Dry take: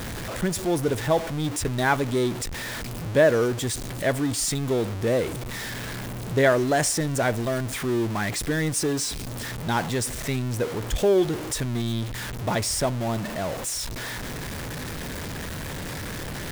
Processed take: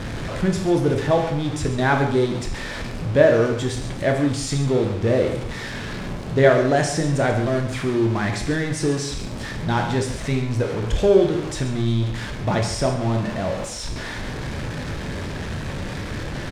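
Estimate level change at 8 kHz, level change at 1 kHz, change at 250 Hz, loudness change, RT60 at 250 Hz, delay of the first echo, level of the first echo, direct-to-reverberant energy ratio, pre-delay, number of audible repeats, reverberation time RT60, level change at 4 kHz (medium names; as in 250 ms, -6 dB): -4.5 dB, +3.0 dB, +4.5 dB, +3.5 dB, 0.50 s, 137 ms, -12.5 dB, 2.5 dB, 17 ms, 1, 0.60 s, +0.5 dB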